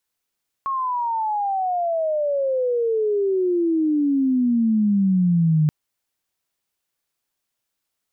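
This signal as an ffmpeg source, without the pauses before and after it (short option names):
-f lavfi -i "aevalsrc='pow(10,(-21+7*t/5.03)/20)*sin(2*PI*1100*5.03/log(150/1100)*(exp(log(150/1100)*t/5.03)-1))':d=5.03:s=44100"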